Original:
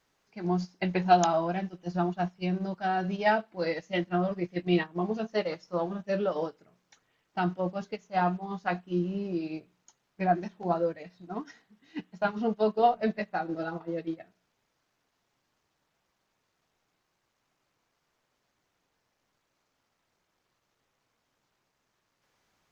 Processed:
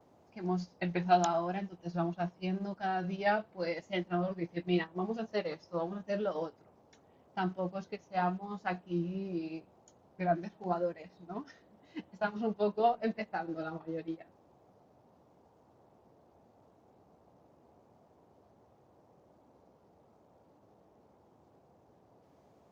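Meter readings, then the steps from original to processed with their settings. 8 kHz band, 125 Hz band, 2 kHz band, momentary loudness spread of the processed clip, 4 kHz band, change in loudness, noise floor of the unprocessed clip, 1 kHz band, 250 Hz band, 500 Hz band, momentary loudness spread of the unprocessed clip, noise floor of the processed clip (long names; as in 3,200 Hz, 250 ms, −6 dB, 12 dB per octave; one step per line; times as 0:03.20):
can't be measured, −5.0 dB, −5.0 dB, 13 LU, −5.0 dB, −5.0 dB, −78 dBFS, −5.5 dB, −5.0 dB, −5.0 dB, 14 LU, −65 dBFS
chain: pitch vibrato 0.85 Hz 60 cents
noise in a band 70–820 Hz −59 dBFS
level −5 dB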